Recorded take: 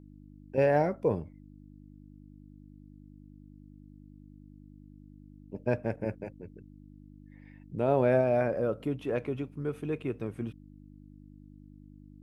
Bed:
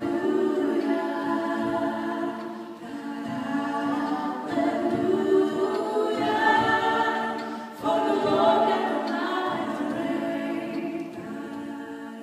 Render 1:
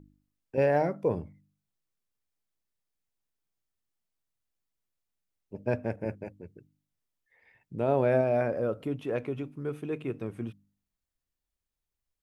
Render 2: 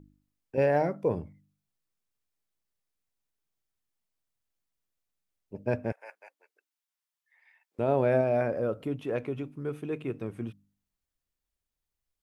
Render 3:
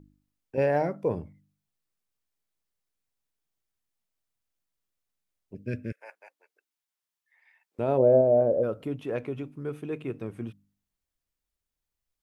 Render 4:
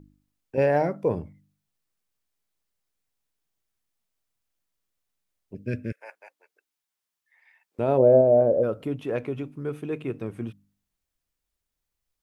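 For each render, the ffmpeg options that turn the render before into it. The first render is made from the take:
-af "bandreject=f=50:t=h:w=4,bandreject=f=100:t=h:w=4,bandreject=f=150:t=h:w=4,bandreject=f=200:t=h:w=4,bandreject=f=250:t=h:w=4,bandreject=f=300:t=h:w=4"
-filter_complex "[0:a]asettb=1/sr,asplit=3[a][b][c];[a]atrim=end=5.924[d];[b]atrim=start=5.92:end=7.79,asetpts=PTS-STARTPTS,afade=t=in:d=0.004:c=qsin,afade=t=out:st=1.866:d=0.004:c=qsin,highpass=f=830:w=0.5412,highpass=f=830:w=1.3066[e];[c]atrim=start=7.786[f];[d][e]acrossfade=d=0.004:c1=hsin:c2=qsin[g];[g][f]acrossfade=d=0.004:c1=qsin:c2=hsin"
-filter_complex "[0:a]asettb=1/sr,asplit=3[a][b][c];[a]atrim=end=5.544[d];[b]atrim=start=5.54:end=6.01,asetpts=PTS-STARTPTS,afade=t=in:d=0.004:c=qsin,afade=t=out:st=0.466:d=0.004:c=qsin,asuperstop=centerf=830:order=4:qfactor=0.59[e];[c]atrim=start=6.006[f];[d][e]acrossfade=d=0.004:c1=hsin:c2=qsin[g];[g][f]acrossfade=d=0.004:c1=qsin:c2=hsin,asplit=3[h][i][j];[h]afade=t=out:st=7.97:d=0.02[k];[i]lowpass=f=550:t=q:w=2.5,afade=t=in:st=7.97:d=0.02,afade=t=out:st=8.62:d=0.02[l];[j]afade=t=in:st=8.62:d=0.02[m];[k][l][m]amix=inputs=3:normalize=0"
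-af "volume=3dB"

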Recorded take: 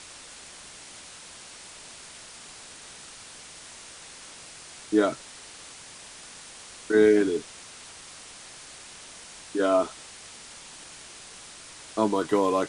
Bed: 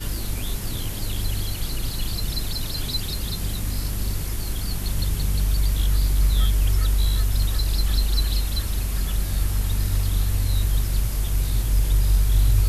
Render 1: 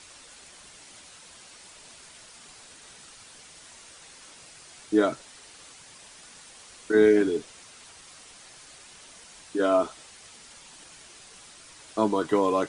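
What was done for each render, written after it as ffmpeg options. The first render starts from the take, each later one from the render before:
-af "afftdn=nr=6:nf=-46"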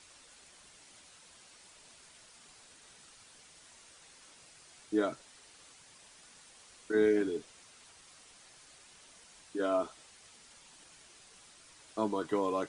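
-af "volume=-8.5dB"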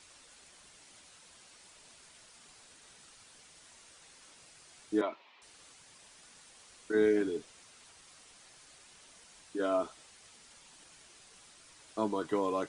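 -filter_complex "[0:a]asettb=1/sr,asplit=3[a][b][c];[a]atrim=end=5.014[d];[b]atrim=start=5.01:end=5.42,asetpts=PTS-STARTPTS,afade=t=in:d=0.004:c=qsin,afade=t=out:st=0.406:d=0.004:c=qsin,highpass=f=260:w=0.5412,highpass=f=260:w=1.3066,equalizer=f=280:t=q:w=4:g=-7,equalizer=f=480:t=q:w=4:g=-6,equalizer=f=1k:t=q:w=4:g=9,equalizer=f=1.5k:t=q:w=4:g=-8,equalizer=f=2.4k:t=q:w=4:g=6,lowpass=f=3.6k:w=0.5412,lowpass=f=3.6k:w=1.3066[e];[c]atrim=start=5.416[f];[d][e]acrossfade=d=0.004:c1=hsin:c2=qsin[g];[g][f]acrossfade=d=0.004:c1=qsin:c2=hsin"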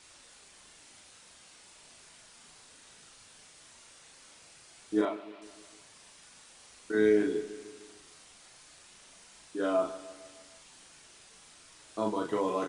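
-filter_complex "[0:a]asplit=2[a][b];[b]adelay=38,volume=-3dB[c];[a][c]amix=inputs=2:normalize=0,aecho=1:1:152|304|456|608|760:0.158|0.0903|0.0515|0.0294|0.0167"

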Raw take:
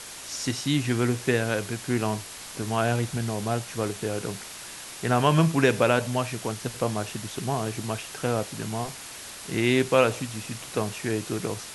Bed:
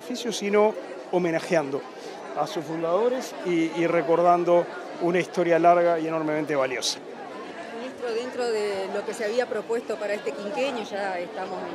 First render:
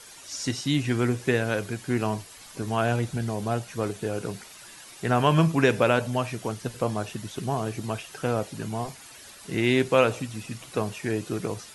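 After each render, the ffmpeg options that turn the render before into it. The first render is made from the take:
-af "afftdn=nr=10:nf=-41"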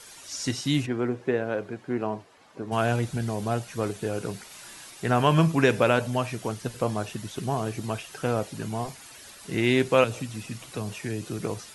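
-filter_complex "[0:a]asplit=3[a][b][c];[a]afade=t=out:st=0.85:d=0.02[d];[b]bandpass=f=520:t=q:w=0.6,afade=t=in:st=0.85:d=0.02,afade=t=out:st=2.71:d=0.02[e];[c]afade=t=in:st=2.71:d=0.02[f];[d][e][f]amix=inputs=3:normalize=0,asettb=1/sr,asplit=3[g][h][i];[g]atrim=end=4.484[j];[h]atrim=start=4.48:end=4.9,asetpts=PTS-STARTPTS,afade=t=in:d=0.004:c=qsin,afade=t=out:st=0.416:d=0.004:c=qsin,asplit=2[k][l];[l]adelay=32,volume=-3.5dB[m];[k][m]amix=inputs=2:normalize=0,atrim=end_sample=18522[n];[i]atrim=start=4.896[o];[j][n]acrossfade=d=0.004:c1=hsin:c2=qsin[p];[p][o]acrossfade=d=0.004:c1=qsin:c2=hsin,asettb=1/sr,asplit=3[q][r][s];[q]atrim=end=10.044[t];[r]atrim=start=10.04:end=11.43,asetpts=PTS-STARTPTS,afade=t=in:d=0.004:c=qsin,afade=t=out:st=1.386:d=0.004:c=qsin,acrossover=split=230|3000[u][v][w];[v]acompressor=threshold=-35dB:ratio=3:attack=3.2:release=140:knee=2.83:detection=peak[x];[u][x][w]amix=inputs=3:normalize=0[y];[s]atrim=start=11.426[z];[t][y]acrossfade=d=0.004:c1=hsin:c2=qsin[aa];[aa][z]acrossfade=d=0.004:c1=qsin:c2=hsin"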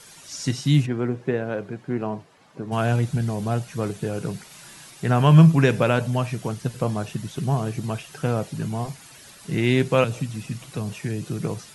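-af "equalizer=f=150:t=o:w=0.77:g=11"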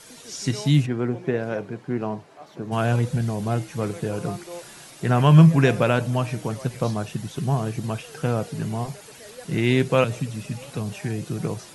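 -filter_complex "[1:a]volume=-18dB[a];[0:a][a]amix=inputs=2:normalize=0"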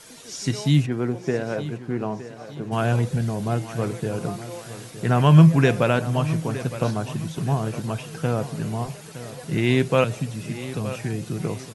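-af "aecho=1:1:915|1830|2745|3660:0.2|0.0818|0.0335|0.0138"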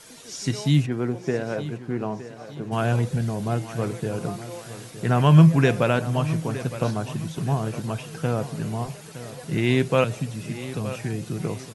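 -af "volume=-1dB"

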